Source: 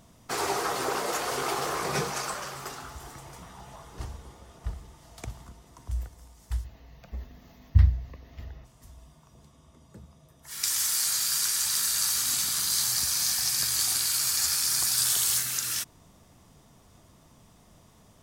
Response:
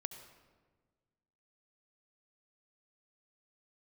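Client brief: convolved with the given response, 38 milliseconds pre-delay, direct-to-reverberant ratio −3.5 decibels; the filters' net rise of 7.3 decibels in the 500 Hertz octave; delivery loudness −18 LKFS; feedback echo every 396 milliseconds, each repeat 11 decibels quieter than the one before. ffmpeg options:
-filter_complex "[0:a]equalizer=frequency=500:width_type=o:gain=9,aecho=1:1:396|792|1188:0.282|0.0789|0.0221,asplit=2[link_01][link_02];[1:a]atrim=start_sample=2205,adelay=38[link_03];[link_02][link_03]afir=irnorm=-1:irlink=0,volume=5.5dB[link_04];[link_01][link_04]amix=inputs=2:normalize=0,volume=2dB"

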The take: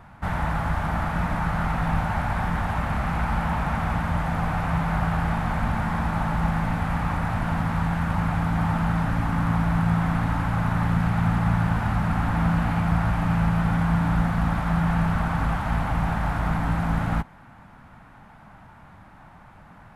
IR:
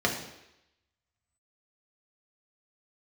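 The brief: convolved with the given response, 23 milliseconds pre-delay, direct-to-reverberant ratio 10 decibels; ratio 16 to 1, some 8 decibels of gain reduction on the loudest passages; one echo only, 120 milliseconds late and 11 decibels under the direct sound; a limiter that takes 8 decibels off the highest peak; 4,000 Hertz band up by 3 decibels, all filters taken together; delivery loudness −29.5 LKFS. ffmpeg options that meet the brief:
-filter_complex "[0:a]equalizer=frequency=4000:width_type=o:gain=4,acompressor=threshold=-25dB:ratio=16,alimiter=level_in=1dB:limit=-24dB:level=0:latency=1,volume=-1dB,aecho=1:1:120:0.282,asplit=2[link_01][link_02];[1:a]atrim=start_sample=2205,adelay=23[link_03];[link_02][link_03]afir=irnorm=-1:irlink=0,volume=-22dB[link_04];[link_01][link_04]amix=inputs=2:normalize=0,volume=3dB"

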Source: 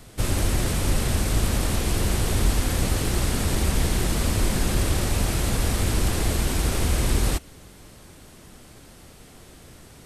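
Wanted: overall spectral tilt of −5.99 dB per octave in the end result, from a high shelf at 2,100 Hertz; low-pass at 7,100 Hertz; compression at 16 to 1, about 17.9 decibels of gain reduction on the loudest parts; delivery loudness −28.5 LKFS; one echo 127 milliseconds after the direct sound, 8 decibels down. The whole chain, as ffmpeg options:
ffmpeg -i in.wav -af "lowpass=7100,highshelf=frequency=2100:gain=-7.5,acompressor=threshold=-35dB:ratio=16,aecho=1:1:127:0.398,volume=14dB" out.wav

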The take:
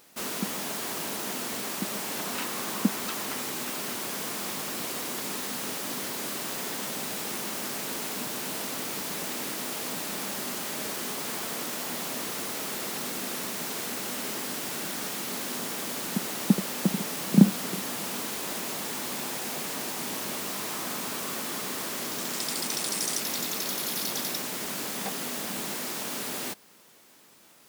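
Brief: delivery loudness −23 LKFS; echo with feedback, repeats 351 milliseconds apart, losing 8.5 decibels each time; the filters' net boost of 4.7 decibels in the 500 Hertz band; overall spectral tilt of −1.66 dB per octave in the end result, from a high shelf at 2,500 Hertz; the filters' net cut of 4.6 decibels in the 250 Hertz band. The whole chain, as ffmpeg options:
ffmpeg -i in.wav -af "equalizer=frequency=250:width_type=o:gain=-8,equalizer=frequency=500:width_type=o:gain=8,highshelf=frequency=2500:gain=4,aecho=1:1:351|702|1053|1404:0.376|0.143|0.0543|0.0206,volume=4dB" out.wav

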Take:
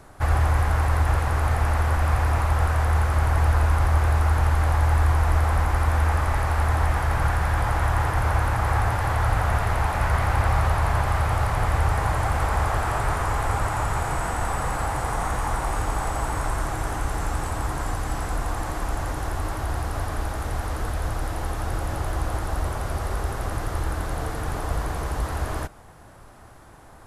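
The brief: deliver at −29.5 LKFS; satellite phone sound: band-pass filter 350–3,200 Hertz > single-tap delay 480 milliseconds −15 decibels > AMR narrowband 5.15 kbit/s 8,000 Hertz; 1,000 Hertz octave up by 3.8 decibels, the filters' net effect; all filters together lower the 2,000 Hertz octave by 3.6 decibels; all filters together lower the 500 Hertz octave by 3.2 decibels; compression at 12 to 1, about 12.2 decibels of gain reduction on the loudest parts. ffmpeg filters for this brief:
ffmpeg -i in.wav -af "equalizer=frequency=500:width_type=o:gain=-7,equalizer=frequency=1000:width_type=o:gain=9,equalizer=frequency=2000:width_type=o:gain=-8.5,acompressor=threshold=-28dB:ratio=12,highpass=350,lowpass=3200,aecho=1:1:480:0.178,volume=10dB" -ar 8000 -c:a libopencore_amrnb -b:a 5150 out.amr

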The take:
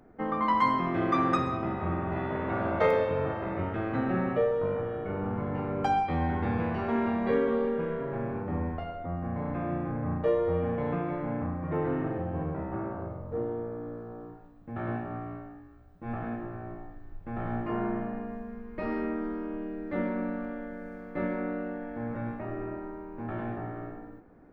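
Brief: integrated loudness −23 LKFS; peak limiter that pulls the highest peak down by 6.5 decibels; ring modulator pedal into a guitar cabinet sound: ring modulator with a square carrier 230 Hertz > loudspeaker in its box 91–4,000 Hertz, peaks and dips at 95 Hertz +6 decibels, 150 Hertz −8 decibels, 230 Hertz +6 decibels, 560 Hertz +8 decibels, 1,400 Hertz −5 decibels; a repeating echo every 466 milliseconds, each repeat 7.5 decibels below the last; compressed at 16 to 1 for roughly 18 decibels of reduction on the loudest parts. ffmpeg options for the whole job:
ffmpeg -i in.wav -af "acompressor=threshold=-39dB:ratio=16,alimiter=level_in=11.5dB:limit=-24dB:level=0:latency=1,volume=-11.5dB,aecho=1:1:466|932|1398|1864|2330:0.422|0.177|0.0744|0.0312|0.0131,aeval=exprs='val(0)*sgn(sin(2*PI*230*n/s))':channel_layout=same,highpass=91,equalizer=frequency=95:width_type=q:width=4:gain=6,equalizer=frequency=150:width_type=q:width=4:gain=-8,equalizer=frequency=230:width_type=q:width=4:gain=6,equalizer=frequency=560:width_type=q:width=4:gain=8,equalizer=frequency=1400:width_type=q:width=4:gain=-5,lowpass=frequency=4000:width=0.5412,lowpass=frequency=4000:width=1.3066,volume=19dB" out.wav

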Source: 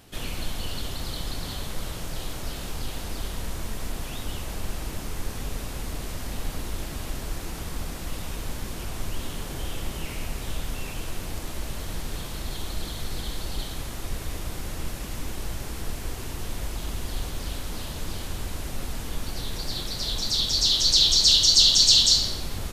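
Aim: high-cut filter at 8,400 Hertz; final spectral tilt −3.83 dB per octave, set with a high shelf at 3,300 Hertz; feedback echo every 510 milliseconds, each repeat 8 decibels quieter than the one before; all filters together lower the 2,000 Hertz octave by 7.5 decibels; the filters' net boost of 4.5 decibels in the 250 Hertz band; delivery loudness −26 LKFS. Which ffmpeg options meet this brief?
ffmpeg -i in.wav -af "lowpass=8400,equalizer=frequency=250:width_type=o:gain=6,equalizer=frequency=2000:width_type=o:gain=-7,highshelf=frequency=3300:gain=-8.5,aecho=1:1:510|1020|1530|2040|2550:0.398|0.159|0.0637|0.0255|0.0102,volume=5dB" out.wav

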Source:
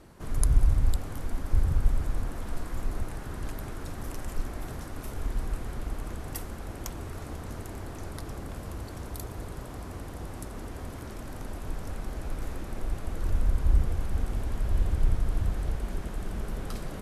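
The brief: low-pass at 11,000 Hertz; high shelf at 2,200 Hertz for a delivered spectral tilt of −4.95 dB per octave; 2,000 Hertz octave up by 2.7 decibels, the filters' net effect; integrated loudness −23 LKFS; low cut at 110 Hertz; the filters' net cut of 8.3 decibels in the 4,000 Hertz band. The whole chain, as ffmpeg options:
ffmpeg -i in.wav -af "highpass=110,lowpass=11000,equalizer=frequency=2000:width_type=o:gain=8.5,highshelf=frequency=2200:gain=-6.5,equalizer=frequency=4000:width_type=o:gain=-8,volume=17.5dB" out.wav

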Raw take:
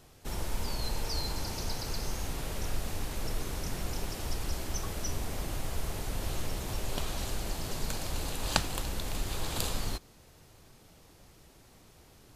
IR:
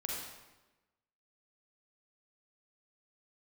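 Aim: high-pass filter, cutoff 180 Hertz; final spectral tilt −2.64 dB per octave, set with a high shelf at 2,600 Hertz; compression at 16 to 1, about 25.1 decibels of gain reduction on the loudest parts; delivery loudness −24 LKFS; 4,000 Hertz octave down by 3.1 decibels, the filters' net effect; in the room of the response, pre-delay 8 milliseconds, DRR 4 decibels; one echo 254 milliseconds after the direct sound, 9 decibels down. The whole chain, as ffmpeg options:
-filter_complex "[0:a]highpass=180,highshelf=frequency=2600:gain=4.5,equalizer=frequency=4000:width_type=o:gain=-8,acompressor=threshold=-49dB:ratio=16,aecho=1:1:254:0.355,asplit=2[link_01][link_02];[1:a]atrim=start_sample=2205,adelay=8[link_03];[link_02][link_03]afir=irnorm=-1:irlink=0,volume=-6dB[link_04];[link_01][link_04]amix=inputs=2:normalize=0,volume=26dB"

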